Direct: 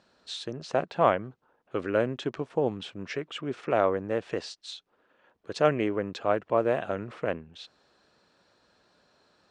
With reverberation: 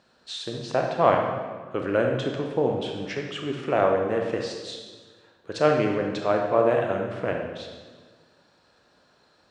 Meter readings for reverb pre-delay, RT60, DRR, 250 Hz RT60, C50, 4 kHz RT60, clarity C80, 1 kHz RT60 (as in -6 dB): 23 ms, 1.5 s, 1.5 dB, 1.7 s, 3.0 dB, 1.2 s, 5.5 dB, 1.4 s